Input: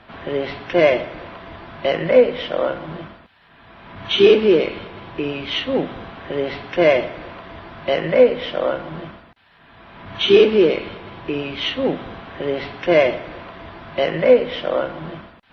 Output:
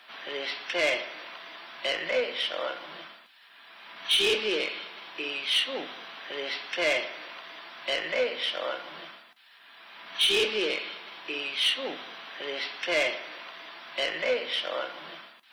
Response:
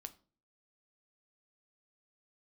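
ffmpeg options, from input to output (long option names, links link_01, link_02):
-filter_complex "[0:a]highpass=frequency=170:width=0.5412,highpass=frequency=170:width=1.3066,aderivative,asoftclip=type=tanh:threshold=-27.5dB,asplit=2[link_01][link_02];[1:a]atrim=start_sample=2205[link_03];[link_02][link_03]afir=irnorm=-1:irlink=0,volume=11dB[link_04];[link_01][link_04]amix=inputs=2:normalize=0"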